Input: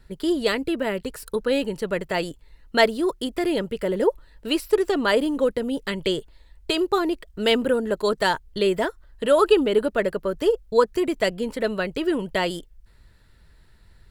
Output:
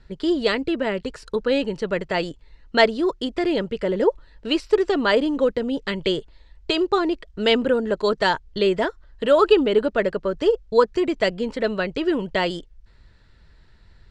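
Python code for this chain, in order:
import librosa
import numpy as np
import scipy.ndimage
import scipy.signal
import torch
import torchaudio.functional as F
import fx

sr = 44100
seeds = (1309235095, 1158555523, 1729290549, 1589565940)

y = scipy.signal.sosfilt(scipy.signal.butter(4, 6500.0, 'lowpass', fs=sr, output='sos'), x)
y = F.gain(torch.from_numpy(y), 1.5).numpy()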